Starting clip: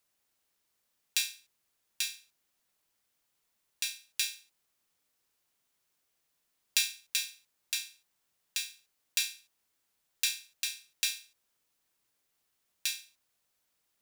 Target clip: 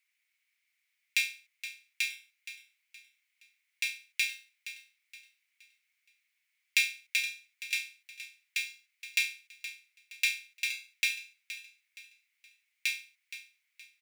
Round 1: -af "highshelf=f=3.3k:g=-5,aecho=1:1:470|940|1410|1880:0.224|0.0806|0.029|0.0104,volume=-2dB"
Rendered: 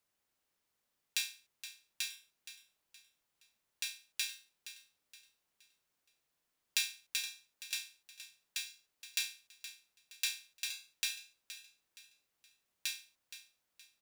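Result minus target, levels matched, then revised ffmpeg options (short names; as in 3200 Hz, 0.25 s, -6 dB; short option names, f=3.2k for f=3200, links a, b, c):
2000 Hz band -5.0 dB
-af "highpass=f=2.2k:t=q:w=8.3,highshelf=f=3.3k:g=-5,aecho=1:1:470|940|1410|1880:0.224|0.0806|0.029|0.0104,volume=-2dB"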